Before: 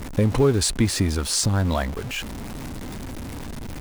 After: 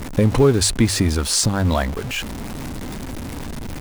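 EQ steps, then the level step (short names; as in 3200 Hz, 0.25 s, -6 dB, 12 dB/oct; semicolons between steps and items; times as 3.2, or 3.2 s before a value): notches 50/100 Hz; +4.0 dB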